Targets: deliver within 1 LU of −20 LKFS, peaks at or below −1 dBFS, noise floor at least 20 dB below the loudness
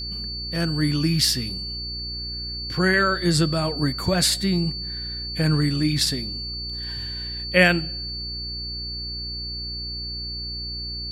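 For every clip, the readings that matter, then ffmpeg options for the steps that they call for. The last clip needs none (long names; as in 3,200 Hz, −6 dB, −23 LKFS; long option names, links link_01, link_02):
mains hum 60 Hz; hum harmonics up to 420 Hz; level of the hum −34 dBFS; interfering tone 4,500 Hz; level of the tone −30 dBFS; integrated loudness −23.5 LKFS; sample peak −2.5 dBFS; target loudness −20.0 LKFS
→ -af "bandreject=frequency=60:width_type=h:width=4,bandreject=frequency=120:width_type=h:width=4,bandreject=frequency=180:width_type=h:width=4,bandreject=frequency=240:width_type=h:width=4,bandreject=frequency=300:width_type=h:width=4,bandreject=frequency=360:width_type=h:width=4,bandreject=frequency=420:width_type=h:width=4"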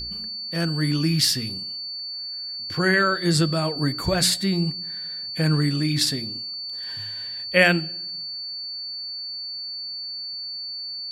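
mains hum none found; interfering tone 4,500 Hz; level of the tone −30 dBFS
→ -af "bandreject=frequency=4500:width=30"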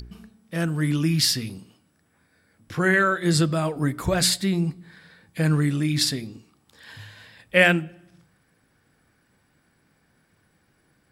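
interfering tone none found; integrated loudness −22.5 LKFS; sample peak −2.5 dBFS; target loudness −20.0 LKFS
→ -af "volume=2.5dB,alimiter=limit=-1dB:level=0:latency=1"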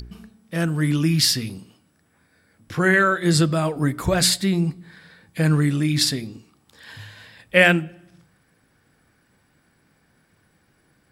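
integrated loudness −20.0 LKFS; sample peak −1.0 dBFS; background noise floor −63 dBFS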